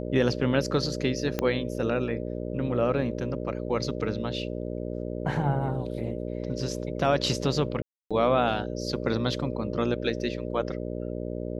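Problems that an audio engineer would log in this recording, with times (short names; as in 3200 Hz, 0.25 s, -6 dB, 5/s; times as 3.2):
buzz 60 Hz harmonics 10 -33 dBFS
1.39 pop -12 dBFS
7.82–8.11 gap 0.286 s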